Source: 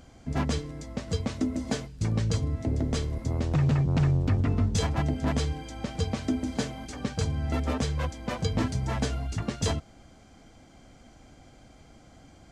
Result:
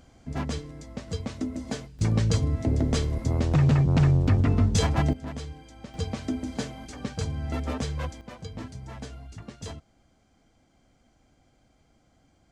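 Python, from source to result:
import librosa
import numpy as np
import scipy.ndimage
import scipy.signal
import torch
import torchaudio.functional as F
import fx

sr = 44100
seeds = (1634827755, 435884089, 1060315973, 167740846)

y = fx.gain(x, sr, db=fx.steps((0.0, -3.0), (1.99, 3.5), (5.13, -9.0), (5.94, -2.0), (8.21, -11.0)))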